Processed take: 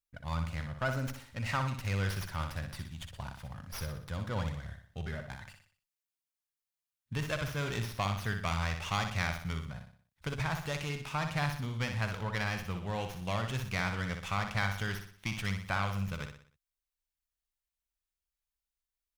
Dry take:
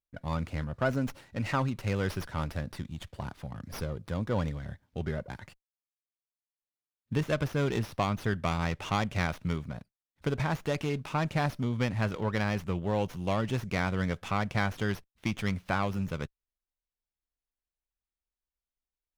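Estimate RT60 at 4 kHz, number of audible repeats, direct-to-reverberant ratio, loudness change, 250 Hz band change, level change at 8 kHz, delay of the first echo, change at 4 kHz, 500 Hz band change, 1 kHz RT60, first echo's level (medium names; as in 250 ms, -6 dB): no reverb, 4, no reverb, -3.5 dB, -7.5 dB, +2.0 dB, 61 ms, +1.0 dB, -7.5 dB, no reverb, -7.0 dB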